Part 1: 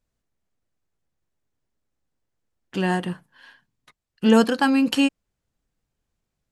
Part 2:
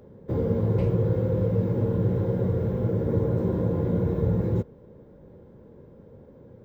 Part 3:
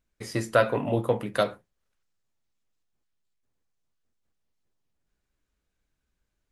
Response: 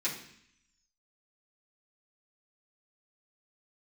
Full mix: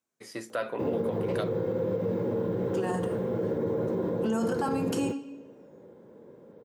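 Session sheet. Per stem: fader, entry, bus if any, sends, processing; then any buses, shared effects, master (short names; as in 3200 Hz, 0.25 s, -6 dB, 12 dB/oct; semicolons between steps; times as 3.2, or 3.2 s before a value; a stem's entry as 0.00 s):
-5.5 dB, 0.00 s, send -5.5 dB, band shelf 2800 Hz -11.5 dB
+1.0 dB, 0.50 s, no send, dry
-7.0 dB, 0.00 s, no send, dry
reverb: on, RT60 0.65 s, pre-delay 3 ms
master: HPF 250 Hz 12 dB/oct; limiter -20.5 dBFS, peak gain reduction 12 dB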